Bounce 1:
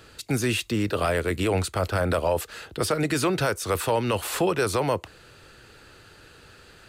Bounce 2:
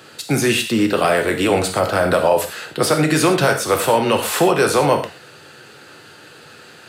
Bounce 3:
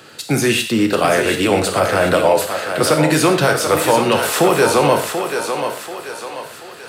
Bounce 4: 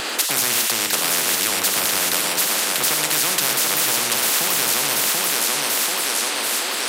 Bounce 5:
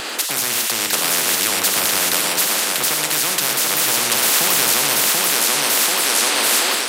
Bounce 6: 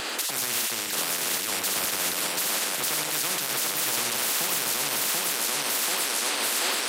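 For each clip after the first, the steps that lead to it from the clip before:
high-pass 130 Hz 24 dB/octave; peaking EQ 730 Hz +3 dB 0.38 oct; reverberation, pre-delay 3 ms, DRR 3.5 dB; trim +7 dB
crackle 32 per s -38 dBFS; on a send: thinning echo 736 ms, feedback 46%, high-pass 340 Hz, level -6 dB; on the sum: trim +1 dB
high-pass 310 Hz 24 dB/octave; spectrum-flattening compressor 10:1; trim +1 dB
level rider; trim -1 dB
peak limiter -12 dBFS, peak gain reduction 10 dB; trim -4.5 dB

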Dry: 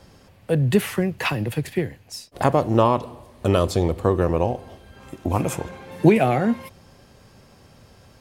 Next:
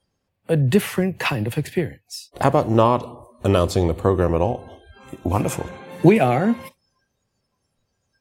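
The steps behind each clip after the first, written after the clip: spectral noise reduction 25 dB; trim +1.5 dB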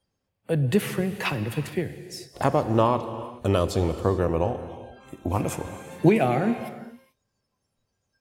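gated-style reverb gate 460 ms flat, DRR 11 dB; trim -5 dB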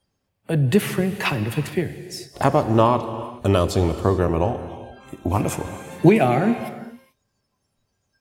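band-stop 500 Hz, Q 12; trim +4.5 dB

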